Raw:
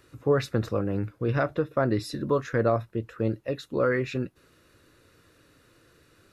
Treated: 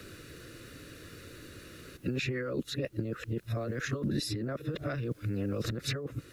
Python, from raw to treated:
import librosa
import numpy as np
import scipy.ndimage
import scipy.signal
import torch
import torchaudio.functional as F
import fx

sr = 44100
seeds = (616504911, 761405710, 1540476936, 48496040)

y = np.flip(x).copy()
y = fx.peak_eq(y, sr, hz=880.0, db=-14.0, octaves=0.78)
y = fx.over_compress(y, sr, threshold_db=-33.0, ratio=-1.0)
y = fx.quant_dither(y, sr, seeds[0], bits=12, dither='none')
y = fx.band_squash(y, sr, depth_pct=40)